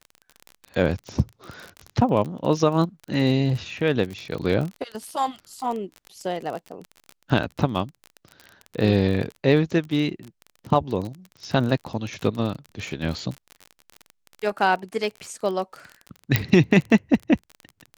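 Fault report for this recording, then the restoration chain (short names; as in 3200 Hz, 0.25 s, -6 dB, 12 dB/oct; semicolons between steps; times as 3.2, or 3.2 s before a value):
crackle 31/s -29 dBFS
16.36 pop -3 dBFS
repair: de-click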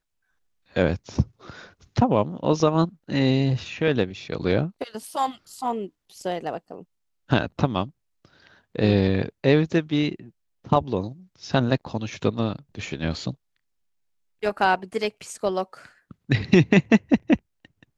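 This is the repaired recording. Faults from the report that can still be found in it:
none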